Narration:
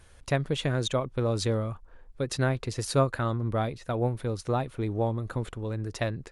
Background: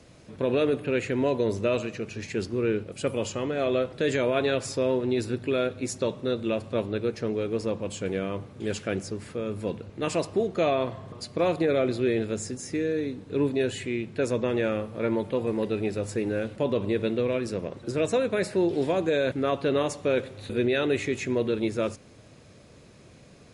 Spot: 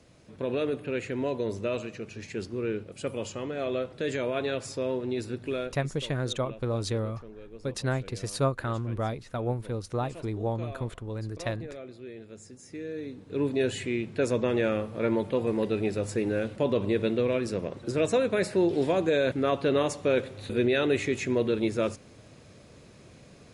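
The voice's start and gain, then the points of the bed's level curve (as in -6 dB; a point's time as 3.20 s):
5.45 s, -2.5 dB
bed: 5.53 s -5 dB
6.06 s -18 dB
12.18 s -18 dB
13.66 s 0 dB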